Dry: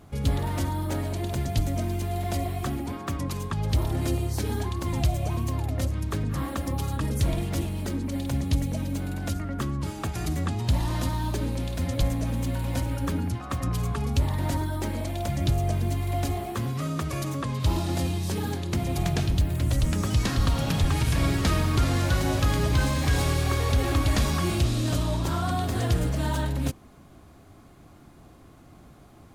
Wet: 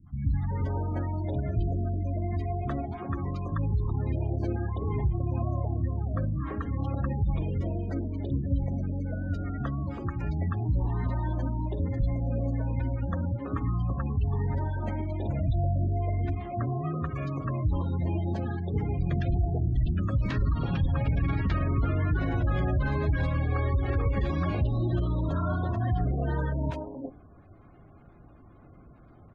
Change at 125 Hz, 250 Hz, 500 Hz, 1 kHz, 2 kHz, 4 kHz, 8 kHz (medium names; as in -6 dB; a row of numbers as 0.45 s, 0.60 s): -1.5 dB, -3.0 dB, -3.0 dB, -4.5 dB, -6.0 dB, under -15 dB, under -30 dB